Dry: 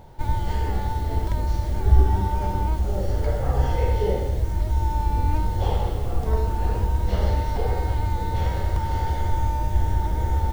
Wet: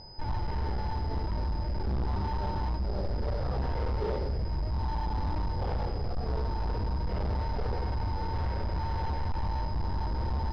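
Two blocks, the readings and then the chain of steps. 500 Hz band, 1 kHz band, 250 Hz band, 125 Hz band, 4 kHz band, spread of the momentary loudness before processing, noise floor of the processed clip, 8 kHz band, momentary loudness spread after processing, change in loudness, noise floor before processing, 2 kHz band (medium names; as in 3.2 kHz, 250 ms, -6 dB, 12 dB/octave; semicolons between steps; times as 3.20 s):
-8.0 dB, -7.5 dB, -5.5 dB, -8.5 dB, -4.0 dB, 3 LU, -33 dBFS, no reading, 2 LU, -8.5 dB, -27 dBFS, -6.5 dB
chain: overload inside the chain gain 22.5 dB; class-D stage that switches slowly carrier 5 kHz; trim -4.5 dB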